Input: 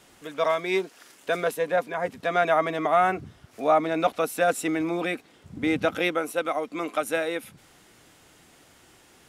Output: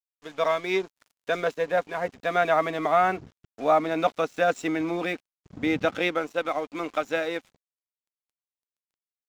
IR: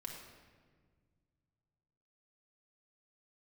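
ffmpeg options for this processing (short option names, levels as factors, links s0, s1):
-af "aresample=16000,aresample=44100,aeval=exprs='sgn(val(0))*max(abs(val(0))-0.00531,0)':c=same"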